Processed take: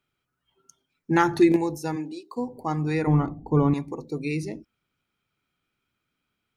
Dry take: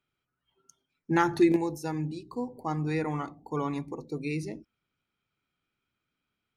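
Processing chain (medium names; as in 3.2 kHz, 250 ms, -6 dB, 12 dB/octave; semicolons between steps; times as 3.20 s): 1.95–2.36 s: high-pass 190 Hz -> 480 Hz 24 dB/octave; 3.07–3.74 s: tilt EQ -4 dB/octave; trim +4 dB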